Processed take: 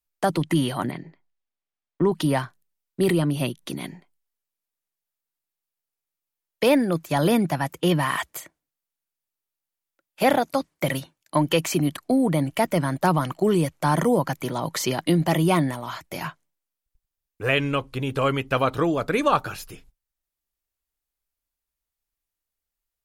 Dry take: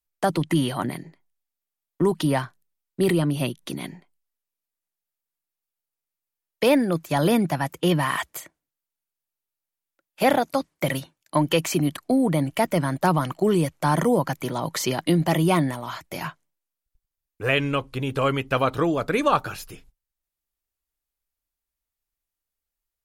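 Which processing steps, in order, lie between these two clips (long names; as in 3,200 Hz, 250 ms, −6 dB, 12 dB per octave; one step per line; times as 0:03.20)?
0:00.91–0:02.12: low-pass filter 3,600 Hz 12 dB per octave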